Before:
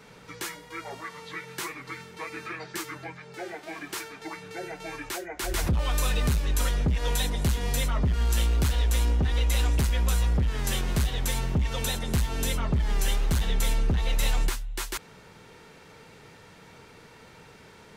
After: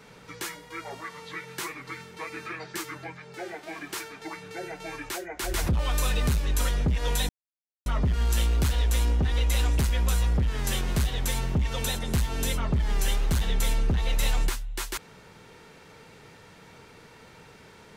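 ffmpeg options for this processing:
-filter_complex "[0:a]asplit=3[s0][s1][s2];[s0]atrim=end=7.29,asetpts=PTS-STARTPTS,afade=t=out:st=7.286:d=0.004:c=hsin[s3];[s1]atrim=start=7.29:end=7.86,asetpts=PTS-STARTPTS,volume=0[s4];[s2]atrim=start=7.86,asetpts=PTS-STARTPTS,afade=t=in:d=0.004:c=hsin[s5];[s3][s4][s5]concat=n=3:v=0:a=1"

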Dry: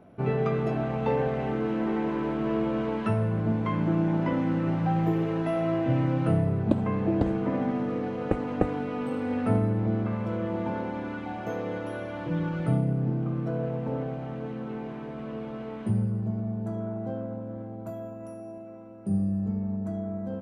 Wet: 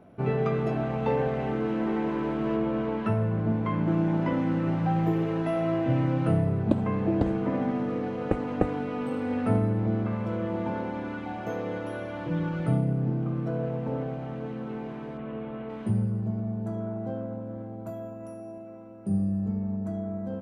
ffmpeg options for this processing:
-filter_complex "[0:a]asettb=1/sr,asplit=3[s0][s1][s2];[s0]atrim=end=2.564[s3];[s1]atrim=start=2.56:end=3.88,asetpts=PTS-STARTPTS,afade=t=in:d=0.004:c=qsin,afade=t=out:st=1.316:d=0.004:c=qsin,highshelf=f=4100:g=-8[s4];[s2]atrim=start=3.876[s5];[s3][s4]acrossfade=d=0.004:c1=hsin:c2=qsin[s6];[s6][s5]acrossfade=d=0.004:c1=qsin:c2=hsin,asplit=3[s7][s8][s9];[s7]afade=t=out:st=15.17:d=0.02[s10];[s8]lowpass=f=3300:w=0.5412,lowpass=f=3300:w=1.3066,afade=t=in:st=15.17:d=0.02,afade=t=out:st=15.68:d=0.02[s11];[s9]afade=t=in:st=15.68:d=0.02[s12];[s10][s11][s12]amix=inputs=3:normalize=0"

